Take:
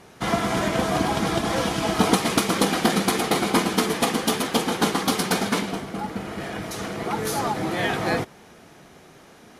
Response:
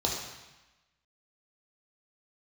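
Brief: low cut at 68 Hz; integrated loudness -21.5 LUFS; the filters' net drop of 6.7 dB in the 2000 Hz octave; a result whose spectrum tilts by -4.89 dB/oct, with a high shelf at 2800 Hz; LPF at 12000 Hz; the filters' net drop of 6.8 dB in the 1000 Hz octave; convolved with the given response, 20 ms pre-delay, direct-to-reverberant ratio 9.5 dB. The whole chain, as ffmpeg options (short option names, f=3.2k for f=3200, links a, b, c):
-filter_complex "[0:a]highpass=68,lowpass=12k,equalizer=f=1k:t=o:g=-8,equalizer=f=2k:t=o:g=-4,highshelf=f=2.8k:g=-4.5,asplit=2[a][b];[1:a]atrim=start_sample=2205,adelay=20[c];[b][c]afir=irnorm=-1:irlink=0,volume=-18dB[d];[a][d]amix=inputs=2:normalize=0,volume=4dB"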